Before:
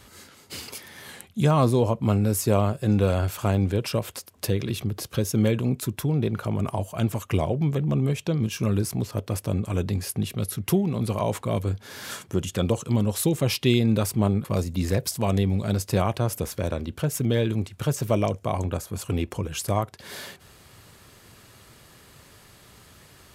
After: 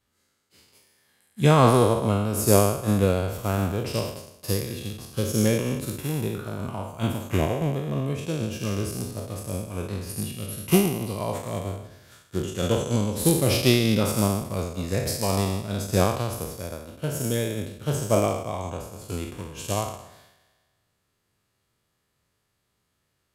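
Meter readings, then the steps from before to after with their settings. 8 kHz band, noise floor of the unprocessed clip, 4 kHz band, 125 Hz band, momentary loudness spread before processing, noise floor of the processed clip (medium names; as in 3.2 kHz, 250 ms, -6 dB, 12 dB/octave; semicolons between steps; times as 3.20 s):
+2.5 dB, -53 dBFS, +2.0 dB, -2.0 dB, 9 LU, -75 dBFS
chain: spectral sustain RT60 1.90 s; upward expansion 2.5:1, over -35 dBFS; trim +2.5 dB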